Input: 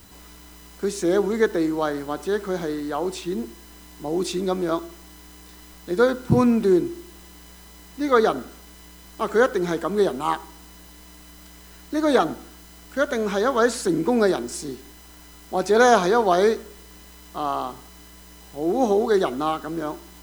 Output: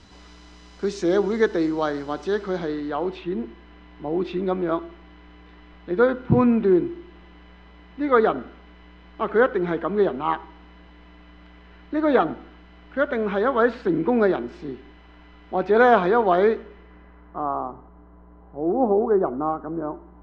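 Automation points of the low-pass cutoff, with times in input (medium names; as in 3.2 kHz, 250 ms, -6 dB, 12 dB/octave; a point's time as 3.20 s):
low-pass 24 dB/octave
2.27 s 5.6 kHz
3.29 s 2.9 kHz
16.57 s 2.9 kHz
17.65 s 1.2 kHz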